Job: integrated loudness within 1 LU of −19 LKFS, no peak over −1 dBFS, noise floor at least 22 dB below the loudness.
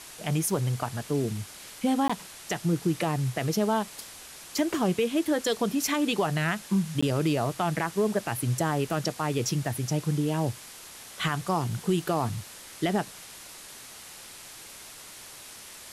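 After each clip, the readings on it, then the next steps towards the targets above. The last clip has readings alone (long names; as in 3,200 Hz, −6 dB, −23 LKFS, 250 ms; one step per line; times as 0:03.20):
number of dropouts 2; longest dropout 15 ms; background noise floor −46 dBFS; target noise floor −50 dBFS; integrated loudness −28.0 LKFS; sample peak −15.0 dBFS; target loudness −19.0 LKFS
→ repair the gap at 0:02.08/0:07.01, 15 ms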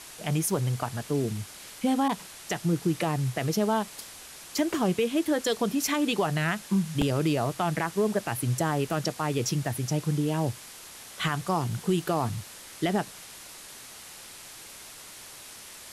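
number of dropouts 0; background noise floor −46 dBFS; target noise floor −50 dBFS
→ broadband denoise 6 dB, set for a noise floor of −46 dBFS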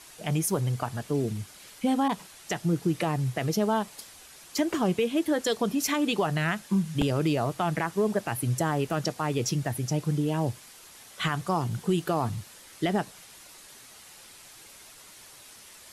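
background noise floor −50 dBFS; target noise floor −51 dBFS
→ broadband denoise 6 dB, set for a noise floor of −50 dBFS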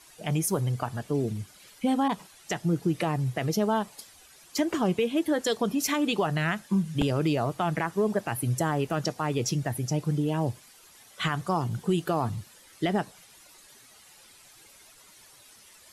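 background noise floor −54 dBFS; integrated loudness −28.5 LKFS; sample peak −12.0 dBFS; target loudness −19.0 LKFS
→ level +9.5 dB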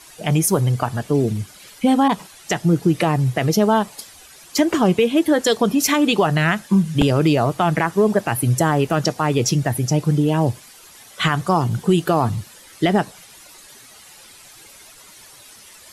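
integrated loudness −19.0 LKFS; sample peak −2.5 dBFS; background noise floor −45 dBFS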